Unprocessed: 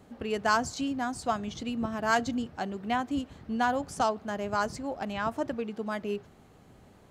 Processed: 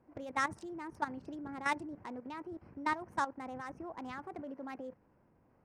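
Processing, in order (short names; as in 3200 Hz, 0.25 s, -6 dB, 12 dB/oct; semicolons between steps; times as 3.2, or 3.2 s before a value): Wiener smoothing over 15 samples; varispeed +26%; level quantiser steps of 13 dB; high shelf 7000 Hz -7 dB; gain -4 dB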